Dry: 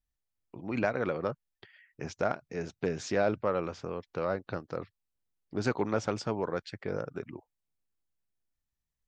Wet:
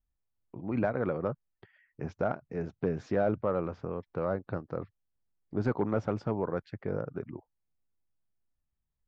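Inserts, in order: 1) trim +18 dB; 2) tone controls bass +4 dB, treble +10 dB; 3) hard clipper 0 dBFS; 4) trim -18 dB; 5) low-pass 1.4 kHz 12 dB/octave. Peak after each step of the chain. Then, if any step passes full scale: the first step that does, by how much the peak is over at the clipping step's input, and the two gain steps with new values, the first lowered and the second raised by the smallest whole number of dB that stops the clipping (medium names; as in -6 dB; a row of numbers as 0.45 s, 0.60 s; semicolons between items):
+4.0 dBFS, +5.0 dBFS, 0.0 dBFS, -18.0 dBFS, -17.5 dBFS; step 1, 5.0 dB; step 1 +13 dB, step 4 -13 dB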